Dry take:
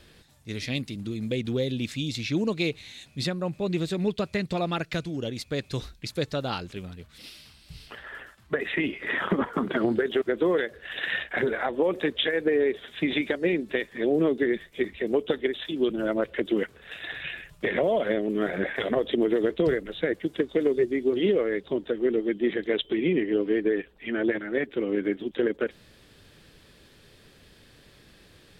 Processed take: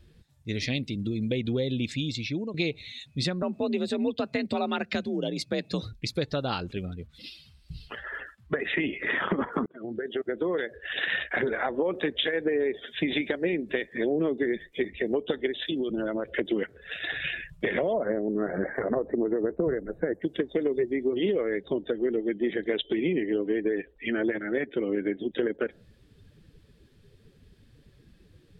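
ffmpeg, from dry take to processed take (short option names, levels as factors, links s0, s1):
-filter_complex "[0:a]asettb=1/sr,asplit=3[s0][s1][s2];[s0]atrim=end=3.424[s3];[s1]atrim=start=3.42:end=5.93,asetpts=PTS-STARTPTS,afade=t=in:d=0.004:c=qsin,afade=t=out:st=2.506:d=0.004:c=qsin,afreqshift=51[s4];[s2]atrim=start=5.926[s5];[s3][s4]acrossfade=d=0.004:c1=hsin:c2=qsin[s6];[s6][s5]acrossfade=d=0.004:c1=qsin:c2=hsin,asettb=1/sr,asplit=3[s7][s8][s9];[s7]atrim=end=15.694[s10];[s8]atrim=start=15.69:end=16.34,asetpts=PTS-STARTPTS,afade=t=in:d=0.004:c=qsin,afade=t=out:st=0.646:d=0.004:c=qsin,acompressor=threshold=0.0447:ratio=10:attack=3.2:release=140:knee=1:detection=peak[s11];[s9]atrim=start=16.336[s12];[s10][s11]acrossfade=d=0.004:c1=hsin:c2=qsin[s13];[s13][s12]acrossfade=d=0.004:c1=qsin:c2=hsin,asettb=1/sr,asplit=3[s14][s15][s16];[s14]atrim=end=17.934[s17];[s15]atrim=start=17.93:end=20.22,asetpts=PTS-STARTPTS,afade=t=in:d=0.004:c=qsin,afade=t=out:st=2.286:d=0.004:c=qsin,asuperstop=centerf=3300:order=4:qfactor=0.64[s18];[s16]atrim=start=20.216[s19];[s17][s18]acrossfade=d=0.004:c1=hsin:c2=qsin[s20];[s20][s19]acrossfade=d=0.004:c1=qsin:c2=hsin,asplit=3[s21][s22][s23];[s21]atrim=end=2.54,asetpts=PTS-STARTPTS,afade=t=out:st=1.89:d=0.65:silence=0.16788[s24];[s22]atrim=start=2.54:end=9.66,asetpts=PTS-STARTPTS,afade=t=in:d=0.004:c=hsin:silence=0.16788,afade=t=out:st=7.116:d=0.004:c=hsin[s25];[s23]atrim=start=9.66,asetpts=PTS-STARTPTS,afade=t=in:d=1.38[s26];[s24][s25][s26]concat=n=3:v=0:a=1,afftdn=nr=17:nf=-46,acompressor=threshold=0.0282:ratio=2.5,volume=1.68"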